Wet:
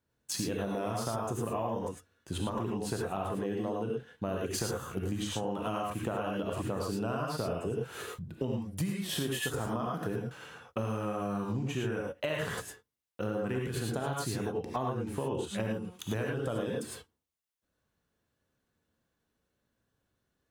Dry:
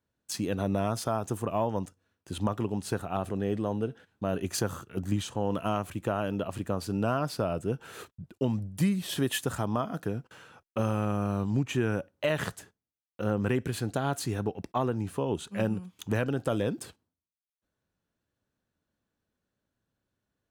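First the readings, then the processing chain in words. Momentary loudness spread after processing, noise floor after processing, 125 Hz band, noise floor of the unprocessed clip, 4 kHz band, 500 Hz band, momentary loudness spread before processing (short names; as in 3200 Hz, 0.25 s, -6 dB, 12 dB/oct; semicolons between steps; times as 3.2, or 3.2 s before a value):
5 LU, -82 dBFS, -4.5 dB, under -85 dBFS, -1.0 dB, -2.5 dB, 8 LU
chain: non-linear reverb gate 0.13 s rising, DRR -2 dB; compressor, threshold -30 dBFS, peak gain reduction 10.5 dB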